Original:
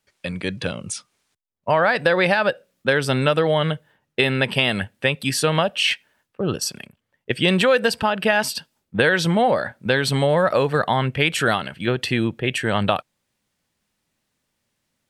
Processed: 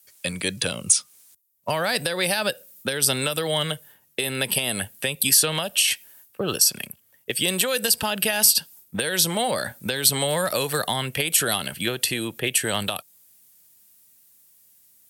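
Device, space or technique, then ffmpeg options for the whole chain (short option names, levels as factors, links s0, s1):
FM broadcast chain: -filter_complex "[0:a]highpass=49,dynaudnorm=f=330:g=11:m=3.76,acrossover=split=370|990|2600|6000[s0][s1][s2][s3][s4];[s0]acompressor=threshold=0.0316:ratio=4[s5];[s1]acompressor=threshold=0.0447:ratio=4[s6];[s2]acompressor=threshold=0.02:ratio=4[s7];[s3]acompressor=threshold=0.0355:ratio=4[s8];[s4]acompressor=threshold=0.0126:ratio=4[s9];[s5][s6][s7][s8][s9]amix=inputs=5:normalize=0,aemphasis=mode=production:type=50fm,alimiter=limit=0.237:level=0:latency=1:release=268,asoftclip=type=hard:threshold=0.211,lowpass=f=15000:w=0.5412,lowpass=f=15000:w=1.3066,aemphasis=mode=production:type=50fm"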